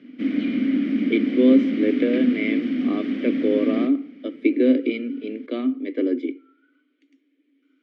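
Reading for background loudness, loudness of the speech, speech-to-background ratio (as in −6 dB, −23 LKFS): −24.0 LKFS, −23.0 LKFS, 1.0 dB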